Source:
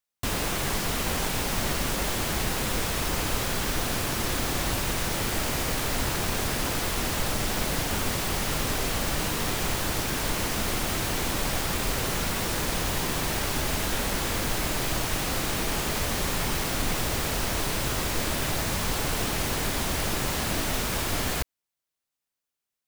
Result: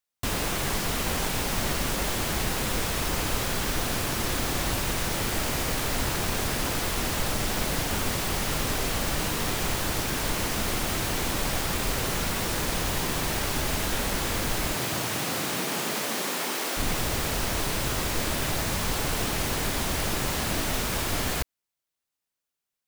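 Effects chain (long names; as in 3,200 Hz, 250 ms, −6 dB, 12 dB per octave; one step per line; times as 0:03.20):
0:14.73–0:16.76: high-pass filter 81 Hz → 290 Hz 24 dB per octave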